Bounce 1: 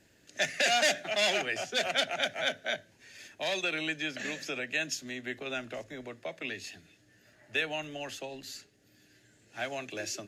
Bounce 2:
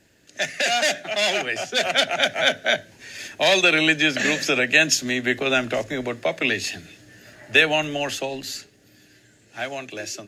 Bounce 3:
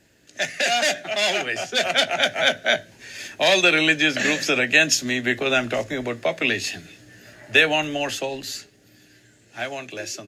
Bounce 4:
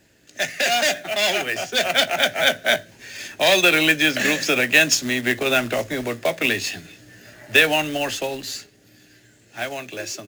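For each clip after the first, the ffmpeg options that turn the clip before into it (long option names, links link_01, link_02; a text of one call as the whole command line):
ffmpeg -i in.wav -af "dynaudnorm=framelen=550:gausssize=9:maxgain=11.5dB,volume=4.5dB" out.wav
ffmpeg -i in.wav -filter_complex "[0:a]asplit=2[link_01][link_02];[link_02]adelay=17,volume=-13dB[link_03];[link_01][link_03]amix=inputs=2:normalize=0" out.wav
ffmpeg -i in.wav -af "acrusher=bits=3:mode=log:mix=0:aa=0.000001,volume=1dB" out.wav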